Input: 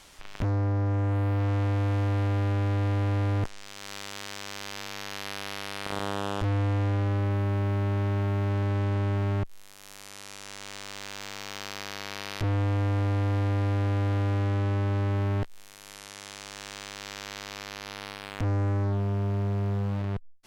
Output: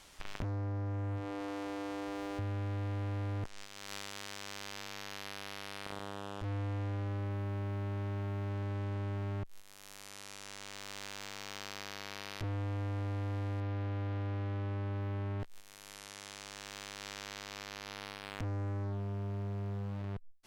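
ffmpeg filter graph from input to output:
-filter_complex "[0:a]asettb=1/sr,asplit=3[a][b][c];[a]atrim=end=1.164[d];[b]atrim=start=1.16:end=2.39,asetpts=PTS-STARTPTS,afade=t=in:d=0.004:c=qsin,afade=t=out:st=1.226:d=0.004:c=qsin,bandreject=f=50:t=h:w=6,bandreject=f=100:t=h:w=6,bandreject=f=150:t=h:w=6,bandreject=f=200:t=h:w=6,adynamicsmooth=sensitivity=7.5:basefreq=730[e];[c]atrim=start=2.386[f];[d][e]acrossfade=d=0.004:c1=hsin:c2=qsin[g];[g][f]acrossfade=d=0.004:c1=qsin:c2=hsin,asettb=1/sr,asplit=3[h][i][j];[h]atrim=end=13.604[k];[i]atrim=start=13.6:end=15.4,asetpts=PTS-STARTPTS,afade=t=in:d=0.004:c=qsin,afade=t=out:st=1.796:d=0.004:c=qsin,lowpass=4.9k,aeval=exprs='sgn(val(0))*max(abs(val(0))-0.00211,0)':c=same[l];[j]atrim=start=15.396[m];[k][l]acrossfade=d=0.004:c1=hsin:c2=qsin[n];[n][m]acrossfade=d=0.004:c1=qsin:c2=hsin,agate=range=-9dB:threshold=-41dB:ratio=16:detection=peak,acompressor=threshold=-41dB:ratio=8,volume=4dB"

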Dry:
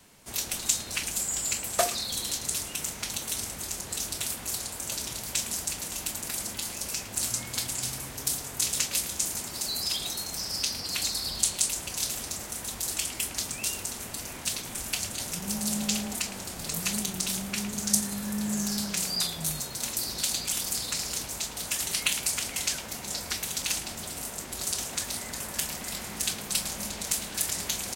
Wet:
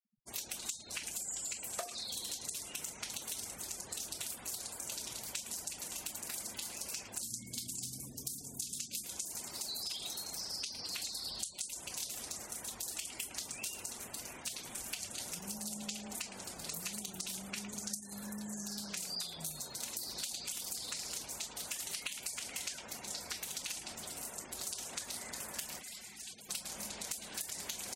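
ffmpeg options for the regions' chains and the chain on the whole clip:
-filter_complex "[0:a]asettb=1/sr,asplit=3[a][b][c];[a]atrim=end=7.224[d];[b]atrim=start=7.22:end=9.04,asetpts=PTS-STARTPTS,afade=t=in:d=0.004:c=qsin,afade=t=out:st=1.816:d=0.004:c=qsin,equalizer=f=230:t=o:w=1.7:g=11.5,bandreject=f=54.11:t=h:w=4,bandreject=f=108.22:t=h:w=4,bandreject=f=162.33:t=h:w=4,bandreject=f=216.44:t=h:w=4,bandreject=f=270.55:t=h:w=4,bandreject=f=324.66:t=h:w=4,bandreject=f=378.77:t=h:w=4,acrossover=split=210|3000[e][f][g];[f]acompressor=threshold=-53dB:ratio=2:attack=3.2:release=140:knee=2.83:detection=peak[h];[e][h][g]amix=inputs=3:normalize=0[i];[c]atrim=start=9.036[j];[d][i]acrossfade=d=0.004:c1=hsin:c2=qsin[k];[k][j]acrossfade=d=0.004:c1=qsin:c2=hsin,asettb=1/sr,asplit=3[l][m][n];[l]atrim=end=25.794[o];[m]atrim=start=25.79:end=26.49,asetpts=PTS-STARTPTS,afade=t=in:d=0.004:c=qsin,afade=t=out:st=0.696:d=0.004:c=qsin,acrossover=split=2000|5100[p][q][r];[p]acompressor=threshold=-49dB:ratio=4[s];[q]acompressor=threshold=-41dB:ratio=4[t];[r]acompressor=threshold=-37dB:ratio=4[u];[s][t][u]amix=inputs=3:normalize=0,asoftclip=type=hard:threshold=-35.5dB[v];[n]atrim=start=26.486[w];[o][v]acrossfade=d=0.004:c1=hsin:c2=qsin[x];[x][w]acrossfade=d=0.004:c1=qsin:c2=hsin,acompressor=threshold=-30dB:ratio=12,afftfilt=real='re*gte(hypot(re,im),0.00794)':imag='im*gte(hypot(re,im),0.00794)':win_size=1024:overlap=0.75,lowshelf=f=180:g=-9,volume=-6dB"

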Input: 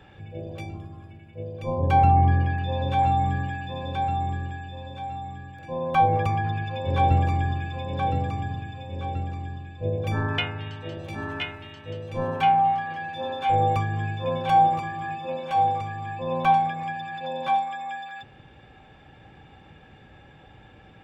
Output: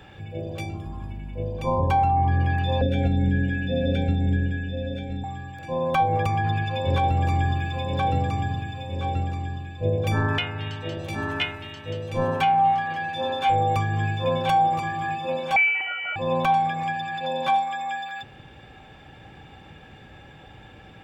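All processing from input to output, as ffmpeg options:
-filter_complex "[0:a]asettb=1/sr,asplit=3[a][b][c];[a]atrim=end=0.864[d];[b]atrim=start=0.86:end=2.29,asetpts=PTS-STARTPTS,afade=t=in:d=0.004:c=qsin,afade=t=out:st=1.426:d=0.004:c=qsin,equalizer=f=940:w=4.3:g=11,aeval=exprs='val(0)+0.0141*(sin(2*PI*50*n/s)+sin(2*PI*2*50*n/s)/2+sin(2*PI*3*50*n/s)/3+sin(2*PI*4*50*n/s)/4+sin(2*PI*5*50*n/s)/5)':c=same[e];[c]atrim=start=2.286[f];[d][e]acrossfade=d=0.004:c1=hsin:c2=qsin[g];[g][f]acrossfade=d=0.004:c1=qsin:c2=hsin,asettb=1/sr,asplit=3[h][i][j];[h]atrim=end=2.814[k];[i]atrim=start=2.81:end=5.24,asetpts=PTS-STARTPTS,afade=t=in:d=0.004:c=qsin,afade=t=out:st=2.426:d=0.004:c=qsin,asuperstop=centerf=1000:order=12:qfactor=1.4,tiltshelf=f=1.3k:g=7,aecho=1:1:4.2:0.63,atrim=end_sample=107163[l];[j]atrim=start=5.236[m];[k][l]acrossfade=d=0.004:c1=hsin:c2=qsin[n];[n][m]acrossfade=d=0.004:c1=qsin:c2=hsin,asettb=1/sr,asplit=3[o][p][q];[o]atrim=end=15.564[r];[p]atrim=start=15.56:end=16.16,asetpts=PTS-STARTPTS,afade=t=in:d=0.004:c=qsin,afade=t=out:st=0.596:d=0.004:c=qsin,tiltshelf=f=970:g=-9.5,lowpass=f=2.6k:t=q:w=0.5098,lowpass=f=2.6k:t=q:w=0.6013,lowpass=f=2.6k:t=q:w=0.9,lowpass=f=2.6k:t=q:w=2.563,afreqshift=-3100[s];[q]atrim=start=16.156[t];[r][s]acrossfade=d=0.004:c1=hsin:c2=qsin[u];[u][t]acrossfade=d=0.004:c1=qsin:c2=hsin,highshelf=f=4k:g=6.5,alimiter=limit=-16.5dB:level=0:latency=1:release=263,volume=3.5dB"

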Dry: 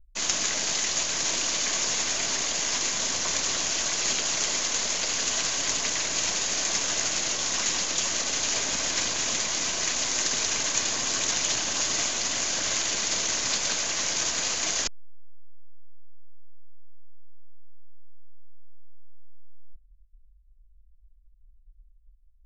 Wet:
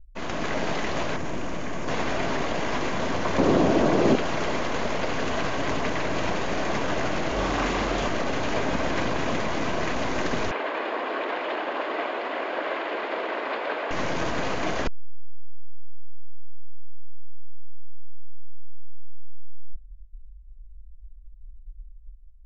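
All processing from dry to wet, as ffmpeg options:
-filter_complex "[0:a]asettb=1/sr,asplit=3[a][b][c];[a]atrim=end=1.164[d];[b]atrim=start=1.16:end=1.88,asetpts=PTS-STARTPTS,afade=t=in:d=0.004:c=qsin,afade=t=out:st=0.716:d=0.004:c=qsin,equalizer=f=4.2k:t=o:w=1.2:g=-9,acrossover=split=240|3000[e][f][g];[f]acompressor=threshold=-42dB:ratio=2.5:attack=3.2:release=140:knee=2.83:detection=peak[h];[e][h][g]amix=inputs=3:normalize=0[i];[c]atrim=start=1.876[j];[d][i]acrossfade=d=0.004:c1=hsin:c2=qsin[k];[k][j]acrossfade=d=0.004:c1=qsin:c2=hsin,asettb=1/sr,asplit=3[l][m][n];[l]atrim=end=3.384[o];[m]atrim=start=3.38:end=4.16,asetpts=PTS-STARTPTS,afade=t=in:d=0.004:c=qsin,afade=t=out:st=0.776:d=0.004:c=qsin,equalizer=f=390:w=0.39:g=15,acrossover=split=290|3000[p][q][r];[q]acompressor=threshold=-31dB:ratio=3:attack=3.2:release=140:knee=2.83:detection=peak[s];[p][s][r]amix=inputs=3:normalize=0[t];[n]atrim=start=4.156[u];[o][t]acrossfade=d=0.004:c1=hsin:c2=qsin[v];[v][u]acrossfade=d=0.004:c1=qsin:c2=hsin,asettb=1/sr,asplit=3[w][x][y];[w]atrim=end=7.324[z];[x]atrim=start=7.32:end=8.08,asetpts=PTS-STARTPTS,afade=t=in:d=0.004:c=qsin,afade=t=out:st=0.756:d=0.004:c=qsin,afreqshift=38,asplit=2[aa][ab];[ab]adelay=42,volume=-2.5dB[ac];[aa][ac]amix=inputs=2:normalize=0,atrim=end_sample=33516[ad];[y]atrim=start=8.076[ae];[z][ad]acrossfade=d=0.004:c1=hsin:c2=qsin[af];[af][ae]acrossfade=d=0.004:c1=qsin:c2=hsin,asettb=1/sr,asplit=3[ag][ah][ai];[ag]atrim=end=10.514[aj];[ah]atrim=start=10.51:end=13.91,asetpts=PTS-STARTPTS,afade=t=in:d=0.004:c=qsin,afade=t=out:st=3.396:d=0.004:c=qsin,acrossover=split=3800[ak][al];[al]acompressor=threshold=-43dB:ratio=4:attack=1:release=60[am];[ak][am]amix=inputs=2:normalize=0,highpass=f=350:w=0.5412,highpass=f=350:w=1.3066,equalizer=f=6.1k:w=2.8:g=-12[an];[ai]atrim=start=13.906[ao];[aj][an]acrossfade=d=0.004:c1=hsin:c2=qsin[ap];[ap][ao]acrossfade=d=0.004:c1=qsin:c2=hsin,lowpass=2.5k,tiltshelf=f=1.5k:g=7.5,dynaudnorm=f=160:g=5:m=5dB"

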